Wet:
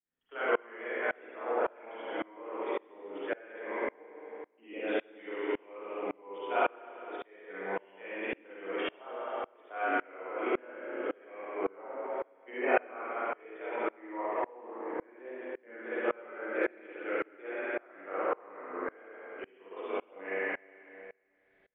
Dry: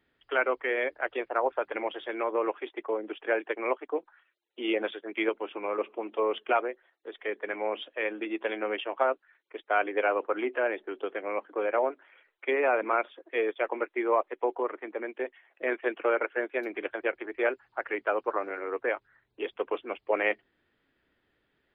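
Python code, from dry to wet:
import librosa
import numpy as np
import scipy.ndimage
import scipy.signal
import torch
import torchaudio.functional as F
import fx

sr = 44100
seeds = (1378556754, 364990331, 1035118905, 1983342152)

y = fx.pitch_trill(x, sr, semitones=-1.5, every_ms=394)
y = fx.rev_spring(y, sr, rt60_s=1.9, pass_ms=(31, 52, 56), chirp_ms=50, drr_db=-10.0)
y = fx.tremolo_decay(y, sr, direction='swelling', hz=1.8, depth_db=29)
y = F.gain(torch.from_numpy(y), -7.0).numpy()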